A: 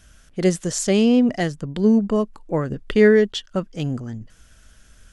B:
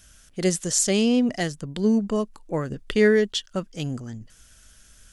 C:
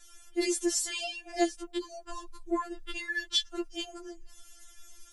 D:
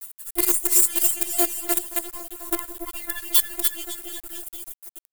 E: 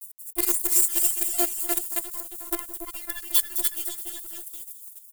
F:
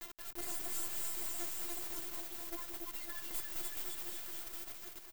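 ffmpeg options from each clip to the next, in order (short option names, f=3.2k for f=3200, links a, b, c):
-af "highshelf=f=3.4k:g=10.5,volume=-4.5dB"
-af "alimiter=limit=-15dB:level=0:latency=1:release=271,afftfilt=real='re*4*eq(mod(b,16),0)':imag='im*4*eq(mod(b,16),0)':win_size=2048:overlap=0.75,volume=1dB"
-filter_complex "[0:a]asplit=2[a][b];[b]aecho=0:1:290|551|785.9|997.3|1188:0.631|0.398|0.251|0.158|0.1[c];[a][c]amix=inputs=2:normalize=0,acrusher=bits=5:dc=4:mix=0:aa=0.000001,aexciter=amount=7.7:drive=4.9:freq=8k"
-filter_complex "[0:a]acrossover=split=4800[a][b];[a]aeval=exprs='sgn(val(0))*max(abs(val(0))-0.00631,0)':c=same[c];[b]asplit=7[d][e][f][g][h][i][j];[e]adelay=211,afreqshift=30,volume=-7.5dB[k];[f]adelay=422,afreqshift=60,volume=-13dB[l];[g]adelay=633,afreqshift=90,volume=-18.5dB[m];[h]adelay=844,afreqshift=120,volume=-24dB[n];[i]adelay=1055,afreqshift=150,volume=-29.6dB[o];[j]adelay=1266,afreqshift=180,volume=-35.1dB[p];[d][k][l][m][n][o][p]amix=inputs=7:normalize=0[q];[c][q]amix=inputs=2:normalize=0,volume=-3dB"
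-af "aexciter=amount=1.3:drive=4:freq=6.4k,aeval=exprs='(tanh(11.2*val(0)+0.8)-tanh(0.8))/11.2':c=same,aeval=exprs='max(val(0),0)':c=same,volume=-1dB"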